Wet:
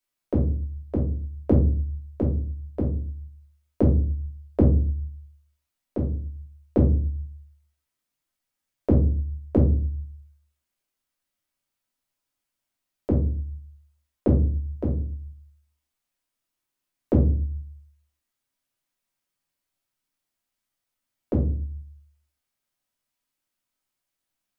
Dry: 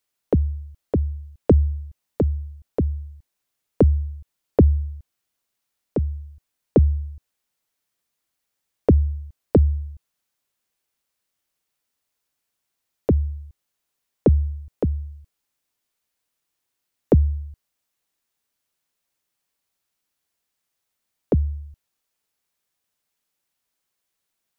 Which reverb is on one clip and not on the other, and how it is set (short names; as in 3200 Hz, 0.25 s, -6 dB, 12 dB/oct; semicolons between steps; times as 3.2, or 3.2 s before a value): shoebox room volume 240 m³, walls furnished, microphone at 2.8 m; gain -9 dB